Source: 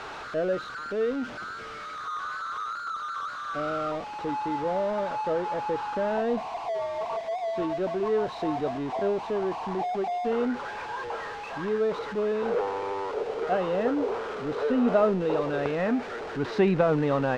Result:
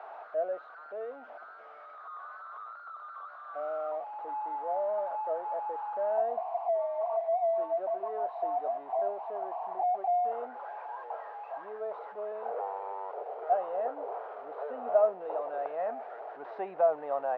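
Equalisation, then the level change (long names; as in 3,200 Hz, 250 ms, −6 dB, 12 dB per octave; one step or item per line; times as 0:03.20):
four-pole ladder band-pass 750 Hz, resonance 70%
+2.5 dB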